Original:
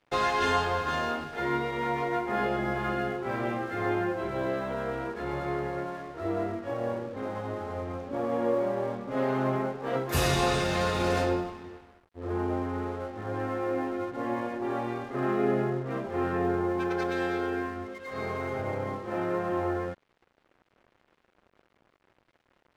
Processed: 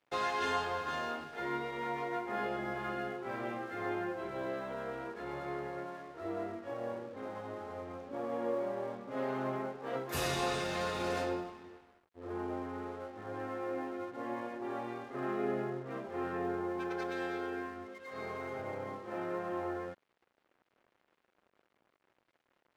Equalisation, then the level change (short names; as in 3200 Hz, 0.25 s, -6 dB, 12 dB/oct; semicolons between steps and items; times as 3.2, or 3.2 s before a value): low shelf 120 Hz -11.5 dB; -7.0 dB